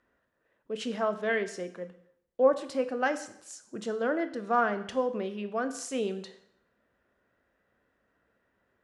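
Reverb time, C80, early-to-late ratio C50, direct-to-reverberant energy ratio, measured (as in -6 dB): 0.70 s, 15.5 dB, 13.0 dB, 9.5 dB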